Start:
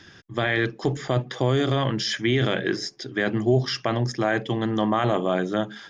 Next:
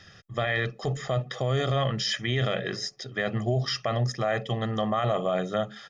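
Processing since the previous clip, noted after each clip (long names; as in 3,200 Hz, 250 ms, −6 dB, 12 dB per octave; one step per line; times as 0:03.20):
comb filter 1.6 ms, depth 73%
brickwall limiter −13 dBFS, peak gain reduction 4.5 dB
level −3.5 dB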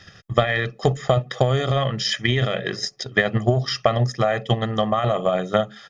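transient designer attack +10 dB, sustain −2 dB
level +3.5 dB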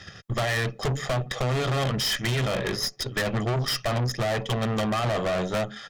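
tube saturation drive 29 dB, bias 0.65
level +6 dB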